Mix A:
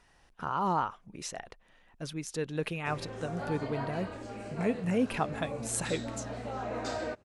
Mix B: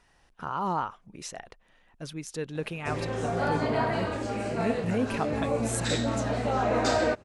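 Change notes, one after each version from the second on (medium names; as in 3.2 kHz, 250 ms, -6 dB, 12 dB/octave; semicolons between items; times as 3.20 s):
background +10.5 dB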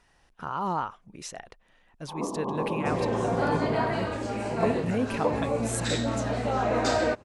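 first sound: unmuted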